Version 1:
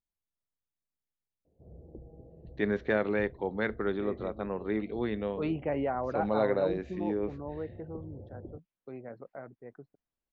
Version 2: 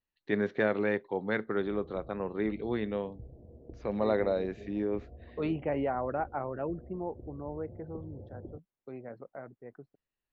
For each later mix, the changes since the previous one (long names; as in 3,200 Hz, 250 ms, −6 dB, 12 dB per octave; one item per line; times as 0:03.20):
first voice: entry −2.30 s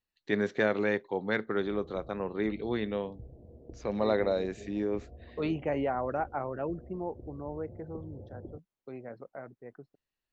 master: remove high-frequency loss of the air 210 metres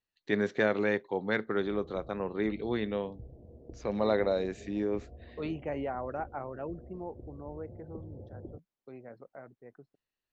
second voice −4.5 dB